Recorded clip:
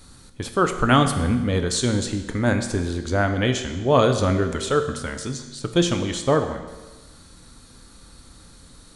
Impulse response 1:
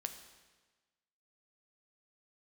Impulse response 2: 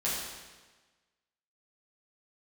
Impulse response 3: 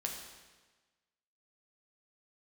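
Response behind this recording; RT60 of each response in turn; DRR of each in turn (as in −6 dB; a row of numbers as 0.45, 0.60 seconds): 1; 1.3, 1.3, 1.3 seconds; 6.5, −8.0, 0.5 decibels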